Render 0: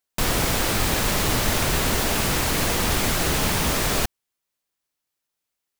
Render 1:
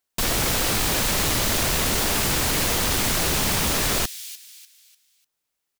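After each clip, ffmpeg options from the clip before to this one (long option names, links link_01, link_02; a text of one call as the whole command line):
ffmpeg -i in.wav -filter_complex "[0:a]acrossover=split=2800[link_01][link_02];[link_01]asoftclip=type=hard:threshold=-25dB[link_03];[link_02]asplit=5[link_04][link_05][link_06][link_07][link_08];[link_05]adelay=297,afreqshift=-55,volume=-11dB[link_09];[link_06]adelay=594,afreqshift=-110,volume=-20.1dB[link_10];[link_07]adelay=891,afreqshift=-165,volume=-29.2dB[link_11];[link_08]adelay=1188,afreqshift=-220,volume=-38.4dB[link_12];[link_04][link_09][link_10][link_11][link_12]amix=inputs=5:normalize=0[link_13];[link_03][link_13]amix=inputs=2:normalize=0,volume=2dB" out.wav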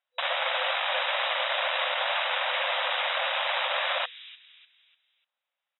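ffmpeg -i in.wav -af "afftfilt=real='re*between(b*sr/4096,500,3900)':imag='im*between(b*sr/4096,500,3900)':win_size=4096:overlap=0.75" out.wav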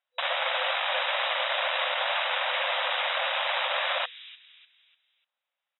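ffmpeg -i in.wav -af anull out.wav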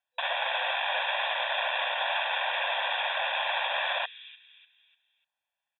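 ffmpeg -i in.wav -af "aecho=1:1:1.2:0.87,volume=-4dB" out.wav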